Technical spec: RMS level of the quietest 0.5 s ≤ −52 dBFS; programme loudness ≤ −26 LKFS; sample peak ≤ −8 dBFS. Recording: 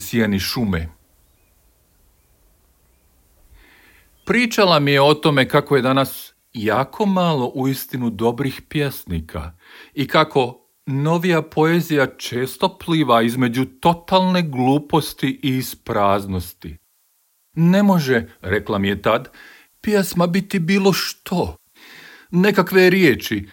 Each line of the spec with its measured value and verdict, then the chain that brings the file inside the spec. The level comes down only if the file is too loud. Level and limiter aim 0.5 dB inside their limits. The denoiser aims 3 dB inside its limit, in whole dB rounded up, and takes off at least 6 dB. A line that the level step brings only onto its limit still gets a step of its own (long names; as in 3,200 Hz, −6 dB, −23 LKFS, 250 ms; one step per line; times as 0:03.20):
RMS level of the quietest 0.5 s −63 dBFS: in spec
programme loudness −18.5 LKFS: out of spec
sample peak −2.0 dBFS: out of spec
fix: level −8 dB